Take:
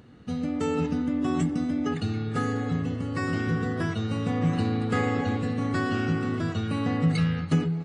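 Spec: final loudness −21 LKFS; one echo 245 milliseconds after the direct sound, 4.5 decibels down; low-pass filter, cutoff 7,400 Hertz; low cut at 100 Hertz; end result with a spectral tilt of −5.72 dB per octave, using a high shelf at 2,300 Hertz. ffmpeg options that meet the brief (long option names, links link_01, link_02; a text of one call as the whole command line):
ffmpeg -i in.wav -af "highpass=100,lowpass=7400,highshelf=frequency=2300:gain=6.5,aecho=1:1:245:0.596,volume=5dB" out.wav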